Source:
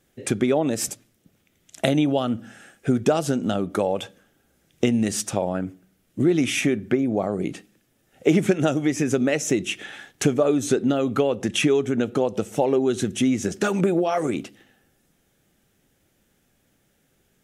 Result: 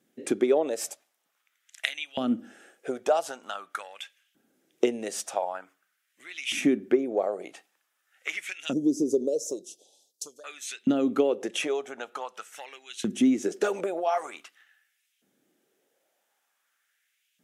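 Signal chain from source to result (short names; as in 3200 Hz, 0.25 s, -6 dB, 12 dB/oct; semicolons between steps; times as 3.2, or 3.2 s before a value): 8.73–10.44 elliptic band-stop 520–4700 Hz, stop band 60 dB; added harmonics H 3 -21 dB, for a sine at -3 dBFS; LFO high-pass saw up 0.46 Hz 210–2900 Hz; gain -4.5 dB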